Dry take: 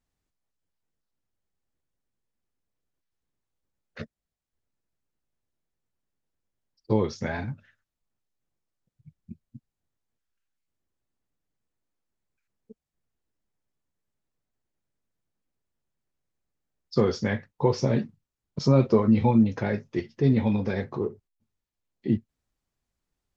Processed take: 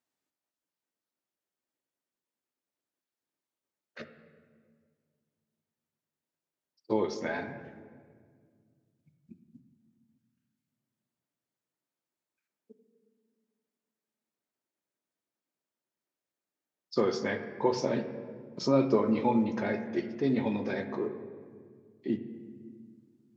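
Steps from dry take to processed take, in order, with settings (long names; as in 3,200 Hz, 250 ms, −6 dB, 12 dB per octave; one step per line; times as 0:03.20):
high-pass filter 270 Hz 12 dB per octave
on a send: convolution reverb RT60 1.9 s, pre-delay 3 ms, DRR 7.5 dB
on the sum: level −2.5 dB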